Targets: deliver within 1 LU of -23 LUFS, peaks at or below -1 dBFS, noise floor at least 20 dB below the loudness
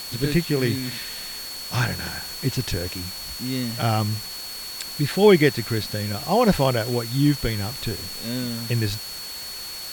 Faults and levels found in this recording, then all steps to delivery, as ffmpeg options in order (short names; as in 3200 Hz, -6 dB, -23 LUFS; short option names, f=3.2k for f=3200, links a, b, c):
steady tone 4400 Hz; tone level -34 dBFS; noise floor -35 dBFS; noise floor target -44 dBFS; loudness -24.0 LUFS; peak -4.0 dBFS; loudness target -23.0 LUFS
-> -af "bandreject=f=4.4k:w=30"
-af "afftdn=nr=9:nf=-35"
-af "volume=1dB"